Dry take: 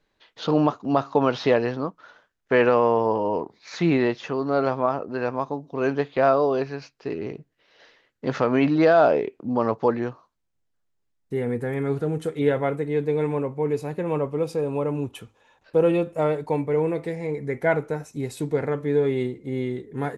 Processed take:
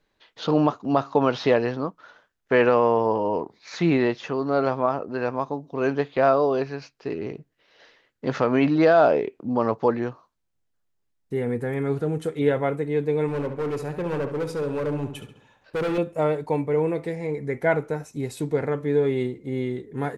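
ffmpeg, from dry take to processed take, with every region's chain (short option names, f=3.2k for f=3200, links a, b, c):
-filter_complex "[0:a]asettb=1/sr,asplit=3[a][b][c];[a]atrim=end=13.284[d];[b]atrim=start=13.28:end=15.98,asetpts=PTS-STARTPTS,afade=t=in:d=0.004:c=qsin,afade=t=out:st=2.696:d=0.004:c=qsin,asoftclip=type=hard:threshold=-23.5dB,asplit=2[e][f];[f]adelay=69,lowpass=f=4.8k:p=1,volume=-9dB,asplit=2[g][h];[h]adelay=69,lowpass=f=4.8k:p=1,volume=0.52,asplit=2[i][j];[j]adelay=69,lowpass=f=4.8k:p=1,volume=0.52,asplit=2[k][l];[l]adelay=69,lowpass=f=4.8k:p=1,volume=0.52,asplit=2[m][n];[n]adelay=69,lowpass=f=4.8k:p=1,volume=0.52,asplit=2[o][p];[p]adelay=69,lowpass=f=4.8k:p=1,volume=0.52[q];[e][g][i][k][m][o][q]amix=inputs=7:normalize=0,atrim=end_sample=119070[r];[c]atrim=start=15.976[s];[d][r]acrossfade=d=0.004:c1=hsin:c2=qsin[t];[t][s]acrossfade=d=0.004:c1=qsin:c2=hsin"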